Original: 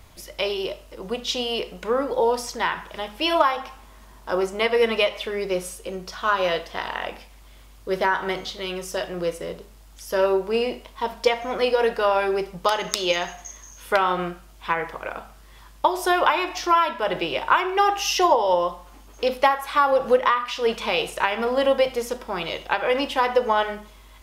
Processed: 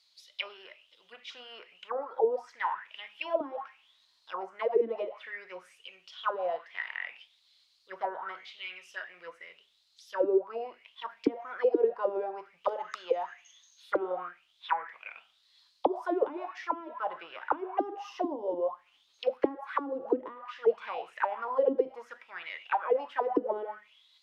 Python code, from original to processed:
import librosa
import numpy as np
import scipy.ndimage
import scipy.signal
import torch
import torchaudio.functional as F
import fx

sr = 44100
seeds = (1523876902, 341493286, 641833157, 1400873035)

y = fx.auto_wah(x, sr, base_hz=280.0, top_hz=4600.0, q=7.6, full_db=-14.5, direction='down')
y = F.gain(torch.from_numpy(y), 1.5).numpy()